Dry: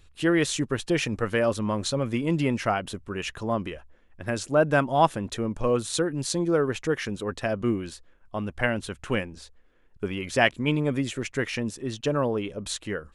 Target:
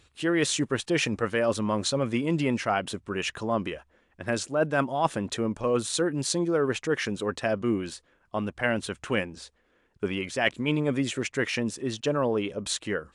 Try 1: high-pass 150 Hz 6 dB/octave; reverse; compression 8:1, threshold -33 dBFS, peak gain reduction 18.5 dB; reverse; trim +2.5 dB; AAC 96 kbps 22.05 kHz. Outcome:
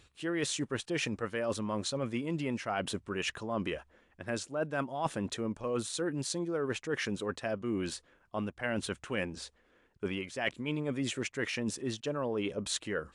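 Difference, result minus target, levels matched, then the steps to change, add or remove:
compression: peak gain reduction +8.5 dB
change: compression 8:1, threshold -23 dBFS, peak gain reduction 9.5 dB

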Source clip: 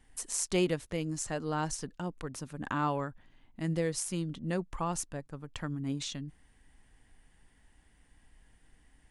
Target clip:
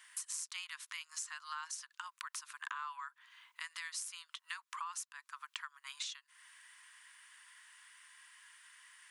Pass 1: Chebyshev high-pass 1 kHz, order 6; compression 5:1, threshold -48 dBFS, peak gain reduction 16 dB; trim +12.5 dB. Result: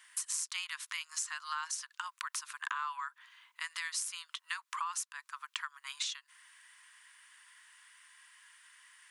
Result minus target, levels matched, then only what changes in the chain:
compression: peak gain reduction -5.5 dB
change: compression 5:1, threshold -55 dBFS, peak gain reduction 22 dB

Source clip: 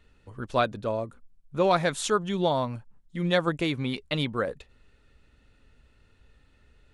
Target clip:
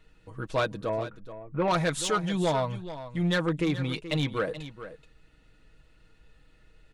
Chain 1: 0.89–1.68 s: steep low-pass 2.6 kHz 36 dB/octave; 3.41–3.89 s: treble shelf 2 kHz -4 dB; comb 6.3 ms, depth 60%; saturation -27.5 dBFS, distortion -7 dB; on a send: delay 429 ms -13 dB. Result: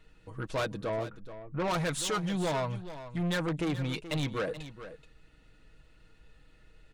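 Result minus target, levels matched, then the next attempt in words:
saturation: distortion +7 dB
0.89–1.68 s: steep low-pass 2.6 kHz 36 dB/octave; 3.41–3.89 s: treble shelf 2 kHz -4 dB; comb 6.3 ms, depth 60%; saturation -19.5 dBFS, distortion -13 dB; on a send: delay 429 ms -13 dB

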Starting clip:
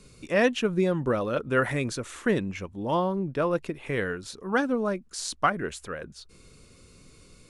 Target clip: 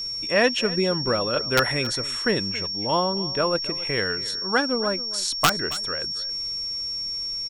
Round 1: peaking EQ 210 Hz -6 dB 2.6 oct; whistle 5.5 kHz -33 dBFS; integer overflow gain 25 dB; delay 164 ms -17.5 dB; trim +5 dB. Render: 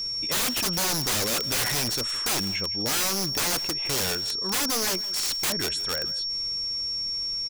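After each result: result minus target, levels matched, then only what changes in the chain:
integer overflow: distortion +20 dB; echo 110 ms early
change: integer overflow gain 13 dB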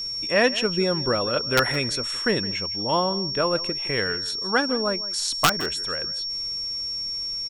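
echo 110 ms early
change: delay 274 ms -17.5 dB

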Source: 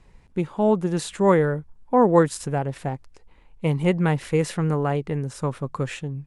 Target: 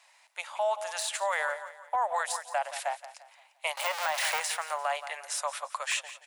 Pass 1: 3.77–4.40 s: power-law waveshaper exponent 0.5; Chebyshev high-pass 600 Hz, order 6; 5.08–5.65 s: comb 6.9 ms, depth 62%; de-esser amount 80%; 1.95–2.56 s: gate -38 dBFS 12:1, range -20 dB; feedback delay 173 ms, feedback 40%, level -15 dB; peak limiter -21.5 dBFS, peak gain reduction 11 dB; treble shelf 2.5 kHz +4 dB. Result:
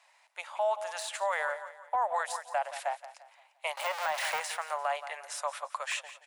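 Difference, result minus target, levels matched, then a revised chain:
4 kHz band -2.5 dB
3.77–4.40 s: power-law waveshaper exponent 0.5; Chebyshev high-pass 600 Hz, order 6; 5.08–5.65 s: comb 6.9 ms, depth 62%; de-esser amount 80%; 1.95–2.56 s: gate -38 dBFS 12:1, range -20 dB; feedback delay 173 ms, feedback 40%, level -15 dB; peak limiter -21.5 dBFS, peak gain reduction 11 dB; treble shelf 2.5 kHz +11 dB

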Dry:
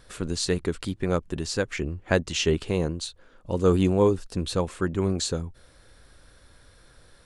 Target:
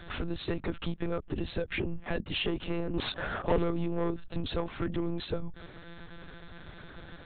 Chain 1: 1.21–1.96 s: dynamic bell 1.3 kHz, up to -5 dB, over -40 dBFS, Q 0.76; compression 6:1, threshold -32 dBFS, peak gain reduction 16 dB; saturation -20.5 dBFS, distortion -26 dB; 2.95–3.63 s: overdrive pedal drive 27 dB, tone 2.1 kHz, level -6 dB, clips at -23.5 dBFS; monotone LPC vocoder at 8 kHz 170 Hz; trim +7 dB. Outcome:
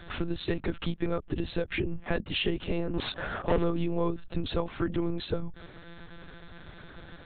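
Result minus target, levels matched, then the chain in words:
saturation: distortion -14 dB
1.21–1.96 s: dynamic bell 1.3 kHz, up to -5 dB, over -40 dBFS, Q 0.76; compression 6:1, threshold -32 dBFS, peak gain reduction 16 dB; saturation -31 dBFS, distortion -12 dB; 2.95–3.63 s: overdrive pedal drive 27 dB, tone 2.1 kHz, level -6 dB, clips at -23.5 dBFS; monotone LPC vocoder at 8 kHz 170 Hz; trim +7 dB

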